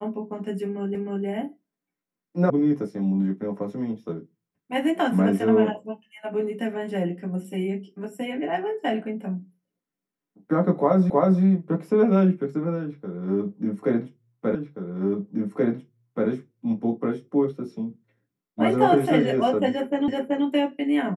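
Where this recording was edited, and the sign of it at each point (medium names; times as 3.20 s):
0.95 s: repeat of the last 0.31 s
2.50 s: sound stops dead
11.10 s: repeat of the last 0.32 s
14.55 s: repeat of the last 1.73 s
20.08 s: repeat of the last 0.38 s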